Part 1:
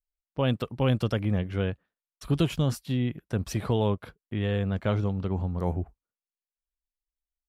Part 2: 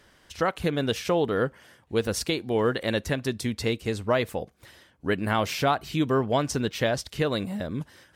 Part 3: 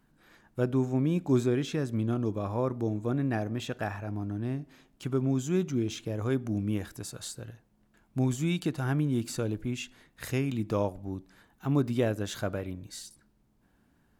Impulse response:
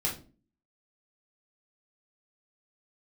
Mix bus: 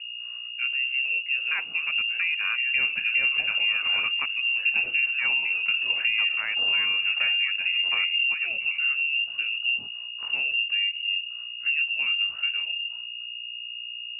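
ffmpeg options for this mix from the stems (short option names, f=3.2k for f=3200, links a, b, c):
-filter_complex "[0:a]adelay=2350,volume=0.5dB,asplit=2[a][b];[b]volume=-7.5dB[c];[1:a]afwtdn=0.0224,highpass=170,adelay=1100,volume=-8.5dB,asplit=2[d][e];[e]volume=-23.5dB[f];[2:a]asubboost=boost=6.5:cutoff=170,flanger=delay=17.5:depth=6.9:speed=0.56,aeval=exprs='val(0)+0.0158*(sin(2*PI*60*n/s)+sin(2*PI*2*60*n/s)/2+sin(2*PI*3*60*n/s)/3+sin(2*PI*4*60*n/s)/4+sin(2*PI*5*60*n/s)/5)':c=same,volume=-7.5dB,asplit=2[g][h];[h]volume=-16.5dB[i];[d][g]amix=inputs=2:normalize=0,acontrast=85,alimiter=limit=-15.5dB:level=0:latency=1:release=371,volume=0dB[j];[3:a]atrim=start_sample=2205[k];[c][f][i]amix=inputs=3:normalize=0[l];[l][k]afir=irnorm=-1:irlink=0[m];[a][j][m]amix=inputs=3:normalize=0,lowpass=f=2.5k:t=q:w=0.5098,lowpass=f=2.5k:t=q:w=0.6013,lowpass=f=2.5k:t=q:w=0.9,lowpass=f=2.5k:t=q:w=2.563,afreqshift=-2900,acompressor=threshold=-22dB:ratio=4"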